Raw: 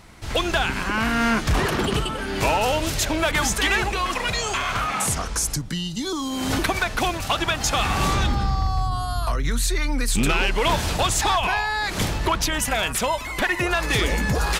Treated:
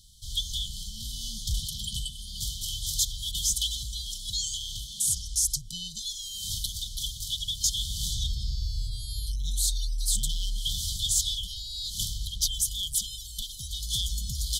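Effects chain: passive tone stack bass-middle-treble 10-0-10; FFT band-reject 230–3000 Hz

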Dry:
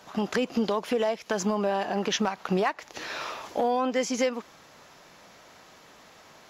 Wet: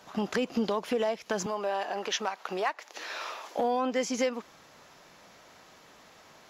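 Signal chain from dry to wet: 1.46–3.59 HPF 440 Hz 12 dB/oct; gain -2.5 dB

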